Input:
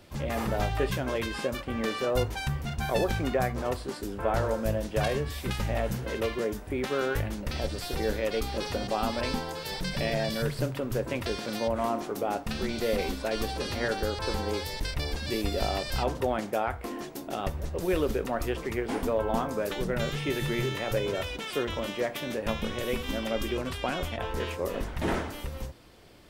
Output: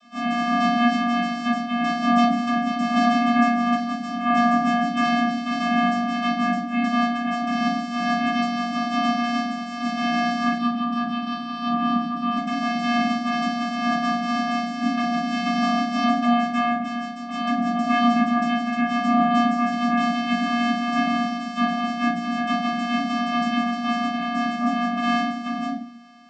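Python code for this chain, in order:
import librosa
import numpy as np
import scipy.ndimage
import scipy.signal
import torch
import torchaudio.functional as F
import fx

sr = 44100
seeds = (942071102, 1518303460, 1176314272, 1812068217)

y = fx.spec_clip(x, sr, under_db=26)
y = fx.lowpass(y, sr, hz=3900.0, slope=6)
y = fx.vocoder(y, sr, bands=16, carrier='square', carrier_hz=238.0)
y = fx.over_compress(y, sr, threshold_db=-33.0, ratio=-0.5, at=(7.03, 7.64))
y = fx.fixed_phaser(y, sr, hz=2000.0, stages=6, at=(10.57, 12.37))
y = fx.room_shoebox(y, sr, seeds[0], volume_m3=370.0, walls='furnished', distance_m=6.1)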